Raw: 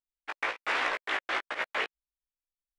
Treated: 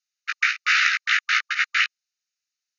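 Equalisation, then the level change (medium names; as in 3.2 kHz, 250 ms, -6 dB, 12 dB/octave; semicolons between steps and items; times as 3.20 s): brick-wall FIR band-pass 1.2–6.9 kHz; tilt EQ +4 dB/octave; band-stop 3.3 kHz, Q 6.7; +8.0 dB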